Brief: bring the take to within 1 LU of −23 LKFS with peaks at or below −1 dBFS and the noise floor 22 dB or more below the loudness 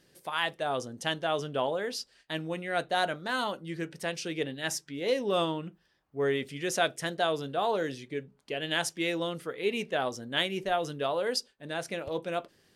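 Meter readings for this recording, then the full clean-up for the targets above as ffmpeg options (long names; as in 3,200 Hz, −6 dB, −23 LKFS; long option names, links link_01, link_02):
integrated loudness −31.5 LKFS; sample peak −12.0 dBFS; target loudness −23.0 LKFS
→ -af "volume=8.5dB"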